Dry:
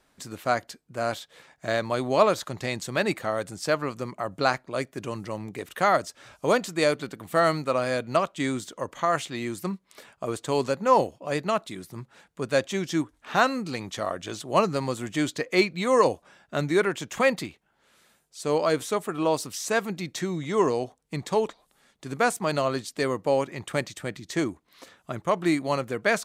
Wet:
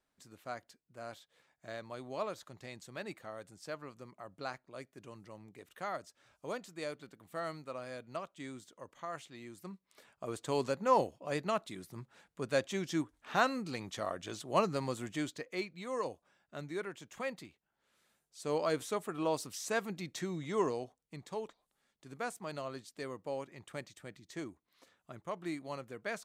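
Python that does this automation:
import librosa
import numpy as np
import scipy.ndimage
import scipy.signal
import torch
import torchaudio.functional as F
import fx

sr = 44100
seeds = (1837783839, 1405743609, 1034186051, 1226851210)

y = fx.gain(x, sr, db=fx.line((9.53, -18.0), (10.49, -8.0), (15.03, -8.0), (15.61, -17.0), (17.43, -17.0), (18.59, -9.0), (20.58, -9.0), (21.16, -16.0)))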